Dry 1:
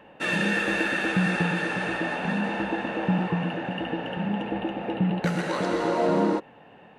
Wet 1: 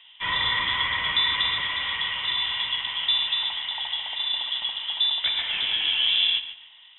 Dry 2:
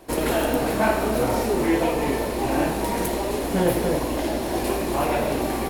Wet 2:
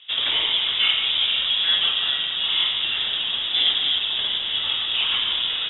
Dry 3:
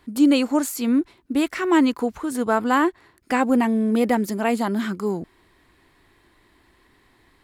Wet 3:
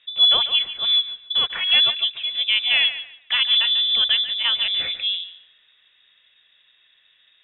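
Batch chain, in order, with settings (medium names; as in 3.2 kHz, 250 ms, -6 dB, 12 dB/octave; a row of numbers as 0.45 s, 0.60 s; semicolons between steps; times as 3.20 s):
level-controlled noise filter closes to 1.8 kHz, open at -16 dBFS; on a send: thinning echo 144 ms, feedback 25%, high-pass 230 Hz, level -12 dB; on the sum: frequency inversion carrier 3.7 kHz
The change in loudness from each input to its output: +3.0 LU, +4.0 LU, +4.0 LU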